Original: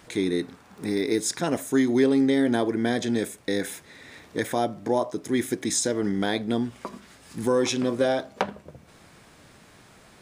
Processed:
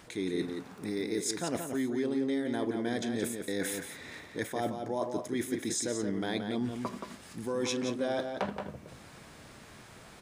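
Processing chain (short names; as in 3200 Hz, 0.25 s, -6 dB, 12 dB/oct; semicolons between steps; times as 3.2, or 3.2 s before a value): reverse; compressor, threshold -30 dBFS, peak gain reduction 13.5 dB; reverse; outdoor echo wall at 30 m, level -6 dB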